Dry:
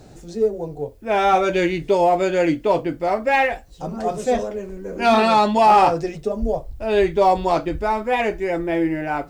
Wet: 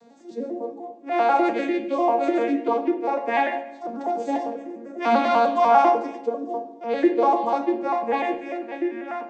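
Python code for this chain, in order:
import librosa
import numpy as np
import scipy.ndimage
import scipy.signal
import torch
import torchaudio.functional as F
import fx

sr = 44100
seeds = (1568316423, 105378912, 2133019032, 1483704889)

y = fx.vocoder_arp(x, sr, chord='minor triad', root=58, every_ms=99)
y = fx.highpass(y, sr, hz=fx.steps((0.0, 500.0), (8.35, 1300.0)), slope=6)
y = fx.room_shoebox(y, sr, seeds[0], volume_m3=330.0, walls='mixed', distance_m=0.59)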